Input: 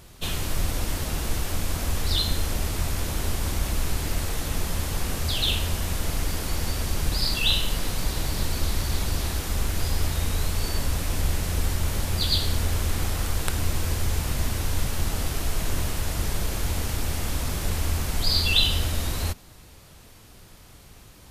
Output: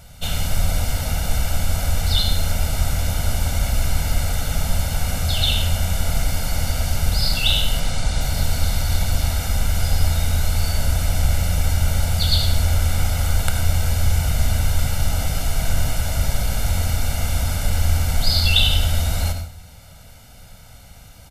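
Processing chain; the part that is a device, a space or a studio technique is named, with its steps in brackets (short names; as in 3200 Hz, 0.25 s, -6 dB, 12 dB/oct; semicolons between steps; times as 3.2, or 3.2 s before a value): 7.8–8.21 LPF 9400 Hz 24 dB/oct; microphone above a desk (comb 1.4 ms, depth 82%; reverb RT60 0.45 s, pre-delay 69 ms, DRR 6.5 dB); gain +1 dB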